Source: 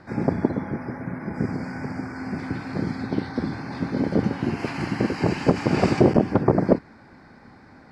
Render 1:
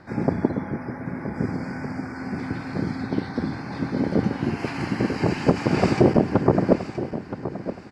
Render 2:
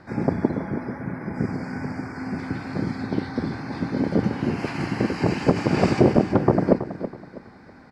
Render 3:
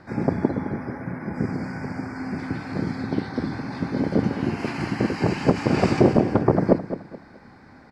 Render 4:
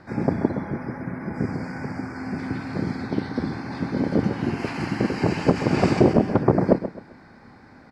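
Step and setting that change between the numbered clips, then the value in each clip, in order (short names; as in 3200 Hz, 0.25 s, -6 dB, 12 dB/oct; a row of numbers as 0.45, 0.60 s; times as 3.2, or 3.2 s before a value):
feedback echo, time: 0.972, 0.325, 0.213, 0.131 s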